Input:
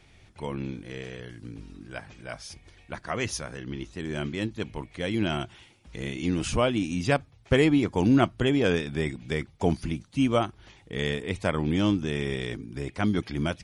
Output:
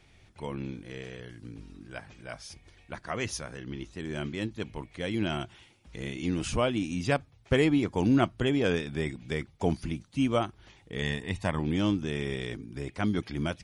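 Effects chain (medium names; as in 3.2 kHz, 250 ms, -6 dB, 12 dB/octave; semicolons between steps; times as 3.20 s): 11.02–11.59 s: comb 1.1 ms, depth 47%; trim -3 dB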